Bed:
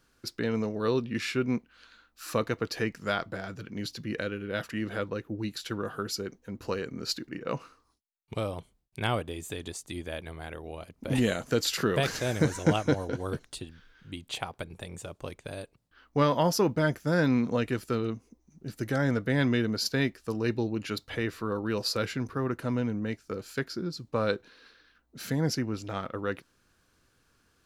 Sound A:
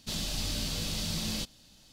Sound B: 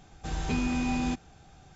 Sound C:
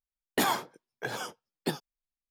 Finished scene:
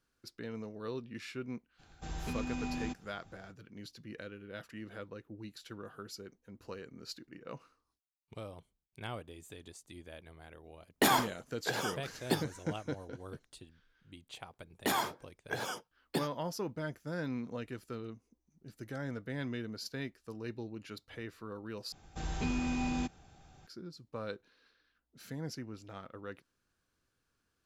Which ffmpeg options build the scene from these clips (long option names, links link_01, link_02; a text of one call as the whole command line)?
ffmpeg -i bed.wav -i cue0.wav -i cue1.wav -i cue2.wav -filter_complex "[2:a]asplit=2[link_01][link_02];[3:a]asplit=2[link_03][link_04];[0:a]volume=-13dB[link_05];[link_01]alimiter=limit=-21dB:level=0:latency=1:release=71[link_06];[link_04]alimiter=limit=-19dB:level=0:latency=1:release=71[link_07];[link_05]asplit=2[link_08][link_09];[link_08]atrim=end=21.924[link_10];[link_02]atrim=end=1.75,asetpts=PTS-STARTPTS,volume=-5dB[link_11];[link_09]atrim=start=23.666[link_12];[link_06]atrim=end=1.75,asetpts=PTS-STARTPTS,volume=-8dB,afade=type=in:duration=0.02,afade=type=out:start_time=1.73:duration=0.02,adelay=1780[link_13];[link_03]atrim=end=2.3,asetpts=PTS-STARTPTS,afade=type=in:duration=0.004:curve=hsin,afade=type=out:start_time=2.296:duration=0.004:curve=hsin,adelay=10640[link_14];[link_07]atrim=end=2.3,asetpts=PTS-STARTPTS,volume=-2dB,afade=type=in:duration=0.004:curve=hsin,afade=type=out:start_time=2.296:duration=0.004:curve=hsin,adelay=14480[link_15];[link_10][link_11]acrossfade=duration=0.004:curve1=hsin:curve2=hsin[link_16];[link_16][link_12]acrossfade=duration=0.004:curve1=hsin:curve2=hsin[link_17];[link_17][link_13][link_14][link_15]amix=inputs=4:normalize=0" out.wav